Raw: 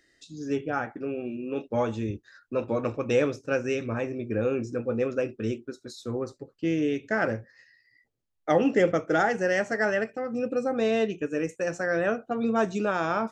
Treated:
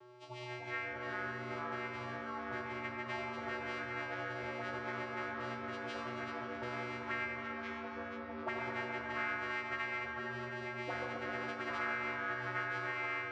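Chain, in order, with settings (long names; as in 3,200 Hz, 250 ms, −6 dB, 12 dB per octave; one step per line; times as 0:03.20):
every partial snapped to a pitch grid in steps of 6 semitones
downward compressor 4 to 1, threshold −35 dBFS, peak gain reduction 16.5 dB
bad sample-rate conversion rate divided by 4×, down none, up zero stuff
channel vocoder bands 4, square 123 Hz
envelope filter 450–2,000 Hz, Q 4, up, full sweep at −36 dBFS
delay with a band-pass on its return 106 ms, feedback 78%, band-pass 840 Hz, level −5 dB
delay with pitch and tempo change per echo 215 ms, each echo −4 semitones, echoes 2
delay that swaps between a low-pass and a high-pass 137 ms, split 1,300 Hz, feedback 54%, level −7 dB
on a send at −2.5 dB: convolution reverb RT60 2.5 s, pre-delay 6 ms
on the sum: multiband upward and downward compressor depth 40%
level +12 dB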